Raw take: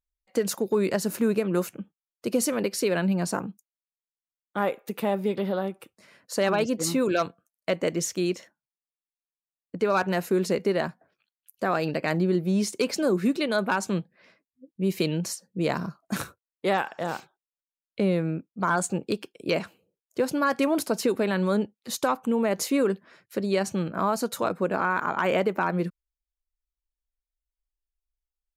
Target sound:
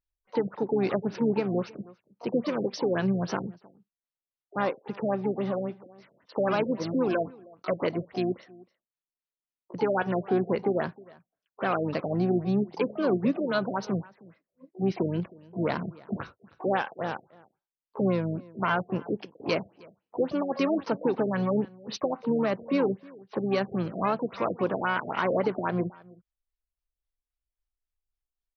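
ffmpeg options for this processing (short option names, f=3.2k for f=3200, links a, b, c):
-filter_complex "[0:a]asplit=2[a][b];[b]adelay=314.9,volume=-23dB,highshelf=f=4k:g=-7.08[c];[a][c]amix=inputs=2:normalize=0,asplit=3[d][e][f];[e]asetrate=29433,aresample=44100,atempo=1.49831,volume=-14dB[g];[f]asetrate=88200,aresample=44100,atempo=0.5,volume=-12dB[h];[d][g][h]amix=inputs=3:normalize=0,afftfilt=real='re*lt(b*sr/1024,690*pow(6400/690,0.5+0.5*sin(2*PI*3.7*pts/sr)))':imag='im*lt(b*sr/1024,690*pow(6400/690,0.5+0.5*sin(2*PI*3.7*pts/sr)))':win_size=1024:overlap=0.75,volume=-2dB"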